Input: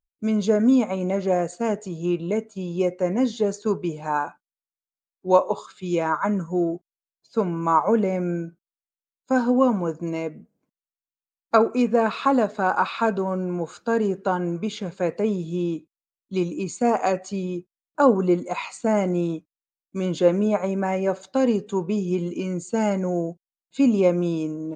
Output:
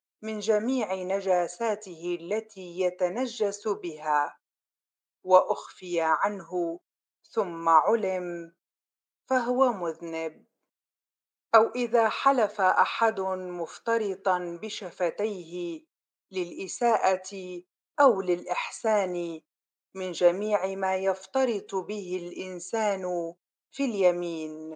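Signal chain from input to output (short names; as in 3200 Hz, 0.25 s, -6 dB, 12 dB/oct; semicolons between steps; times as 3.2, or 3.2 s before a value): HPF 480 Hz 12 dB/oct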